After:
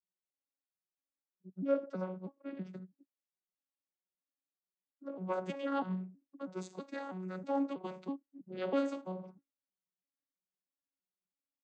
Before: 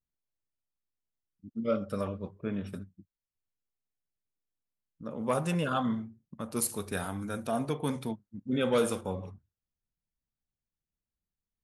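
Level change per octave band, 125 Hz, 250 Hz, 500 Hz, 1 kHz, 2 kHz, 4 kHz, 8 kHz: -10.0 dB, -5.5 dB, -5.5 dB, -5.5 dB, -9.0 dB, -12.0 dB, -24.0 dB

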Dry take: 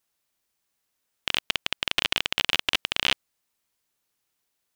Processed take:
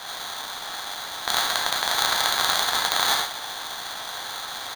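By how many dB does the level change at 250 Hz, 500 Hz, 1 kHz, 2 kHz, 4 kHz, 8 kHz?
0.0 dB, +7.0 dB, +12.5 dB, +3.0 dB, +3.0 dB, +13.5 dB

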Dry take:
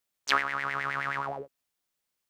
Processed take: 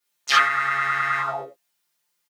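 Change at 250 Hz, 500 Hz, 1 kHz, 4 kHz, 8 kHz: -2.5 dB, +4.0 dB, +9.0 dB, +9.0 dB, +9.5 dB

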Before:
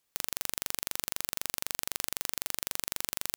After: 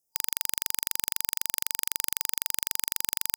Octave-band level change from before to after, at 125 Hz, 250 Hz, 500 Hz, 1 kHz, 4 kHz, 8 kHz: -2.0 dB, -2.5 dB, -5.0 dB, -2.5 dB, +2.0 dB, +5.0 dB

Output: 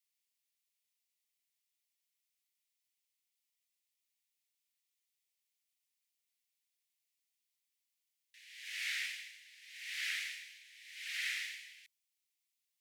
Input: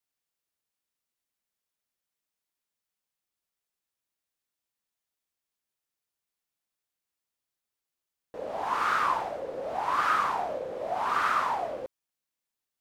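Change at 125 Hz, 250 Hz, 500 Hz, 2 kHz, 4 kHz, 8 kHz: under -40 dB, under -40 dB, under -40 dB, -6.5 dB, +1.5 dB, +1.5 dB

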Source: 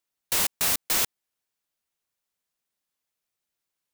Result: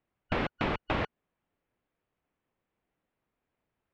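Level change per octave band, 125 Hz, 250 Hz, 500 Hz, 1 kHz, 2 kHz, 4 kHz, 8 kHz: +9.0 dB, +8.0 dB, +5.5 dB, +2.0 dB, -2.5 dB, -13.0 dB, under -35 dB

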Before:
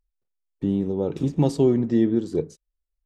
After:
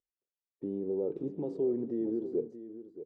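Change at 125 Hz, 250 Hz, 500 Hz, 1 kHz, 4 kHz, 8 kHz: -21.5 dB, -12.5 dB, -8.0 dB, -18.5 dB, under -30 dB, no reading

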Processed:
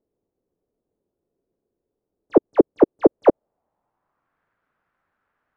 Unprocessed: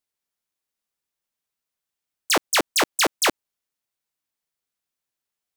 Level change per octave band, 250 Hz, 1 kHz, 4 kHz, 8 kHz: +12.0 dB, -3.0 dB, under -30 dB, under -40 dB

